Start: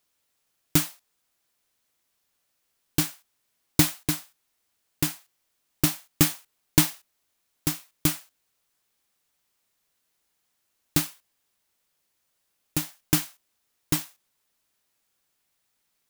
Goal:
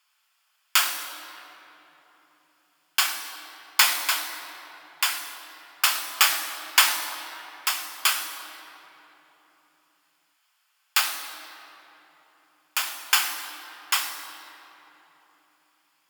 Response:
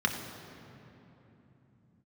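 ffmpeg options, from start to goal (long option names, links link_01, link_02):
-filter_complex "[0:a]highpass=frequency=790:width=0.5412,highpass=frequency=790:width=1.3066[link_01];[1:a]atrim=start_sample=2205,asetrate=38367,aresample=44100[link_02];[link_01][link_02]afir=irnorm=-1:irlink=0"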